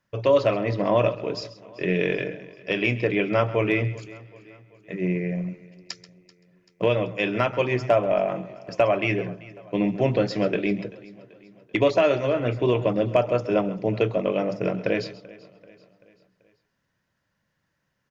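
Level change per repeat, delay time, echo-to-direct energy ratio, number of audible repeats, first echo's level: no steady repeat, 0.134 s, -14.5 dB, 4, -16.0 dB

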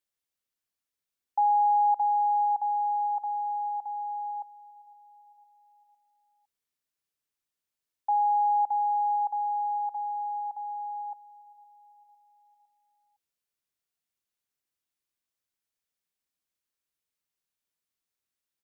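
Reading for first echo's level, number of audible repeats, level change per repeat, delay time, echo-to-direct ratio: -22.0 dB, 3, -5.0 dB, 0.508 s, -20.5 dB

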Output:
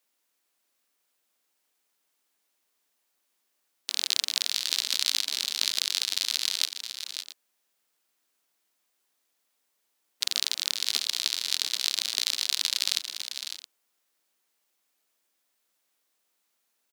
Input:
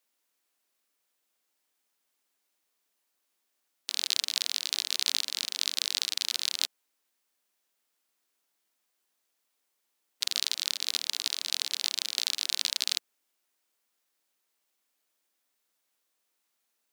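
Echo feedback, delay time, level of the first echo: no steady repeat, 0.553 s, -9.0 dB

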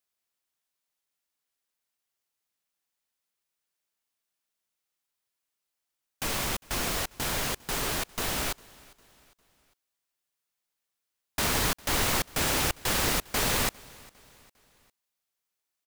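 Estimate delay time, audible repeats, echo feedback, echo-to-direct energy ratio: 0.403 s, 2, 45%, -23.0 dB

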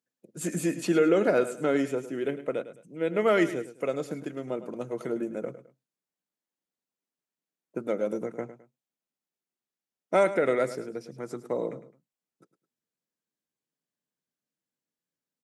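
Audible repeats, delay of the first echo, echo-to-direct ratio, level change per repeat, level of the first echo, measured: 2, 0.106 s, -13.0 dB, -10.0 dB, -13.5 dB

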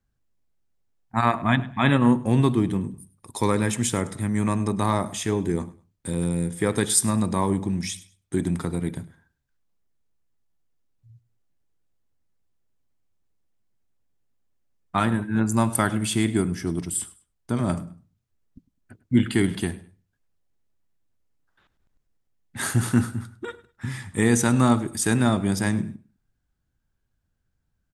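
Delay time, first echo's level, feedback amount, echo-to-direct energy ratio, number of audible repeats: 0.102 s, -20.0 dB, 25%, -19.5 dB, 2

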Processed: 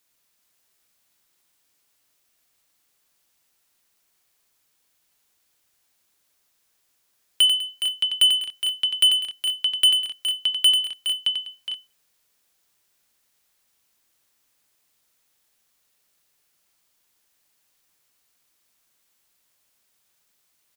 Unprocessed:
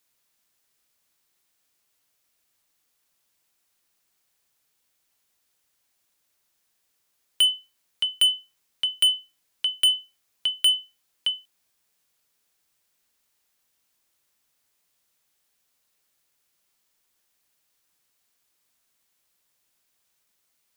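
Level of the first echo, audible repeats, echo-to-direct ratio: -7.0 dB, 4, -3.5 dB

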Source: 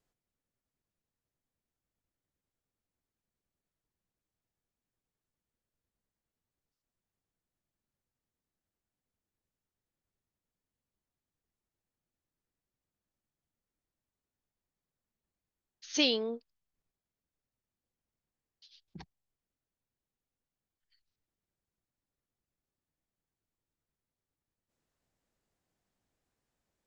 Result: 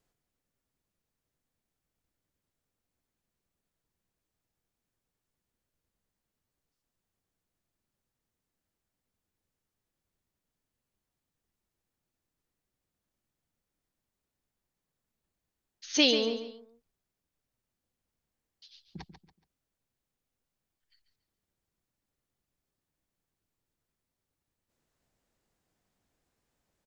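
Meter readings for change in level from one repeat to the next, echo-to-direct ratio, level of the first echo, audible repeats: -10.0 dB, -9.5 dB, -10.0 dB, 3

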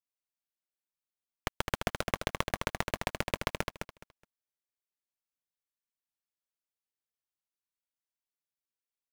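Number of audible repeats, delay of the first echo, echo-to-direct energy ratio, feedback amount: 3, 0.21 s, -6.0 dB, 21%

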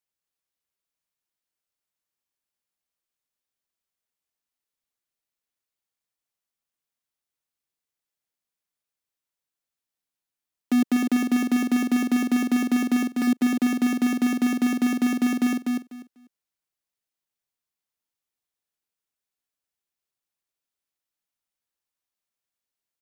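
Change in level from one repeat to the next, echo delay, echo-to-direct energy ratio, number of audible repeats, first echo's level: -15.0 dB, 0.247 s, -4.5 dB, 3, -4.5 dB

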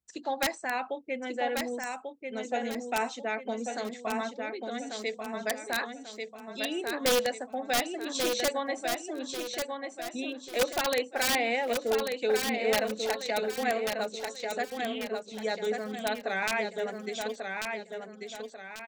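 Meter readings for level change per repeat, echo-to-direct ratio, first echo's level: -8.0 dB, -4.5 dB, -5.0 dB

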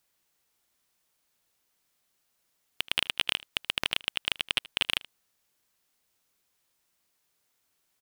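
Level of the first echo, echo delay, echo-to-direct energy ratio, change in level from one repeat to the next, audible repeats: -21.0 dB, 78 ms, -21.0 dB, no steady repeat, 1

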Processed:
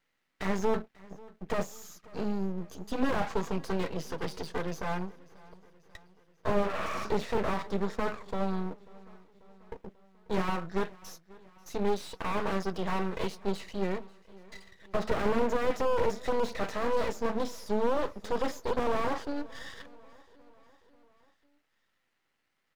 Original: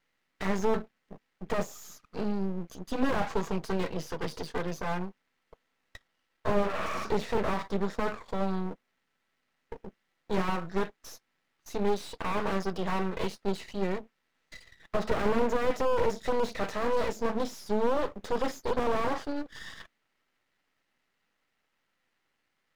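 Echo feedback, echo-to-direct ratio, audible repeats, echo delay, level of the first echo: 58%, -21.0 dB, 3, 0.54 s, -22.5 dB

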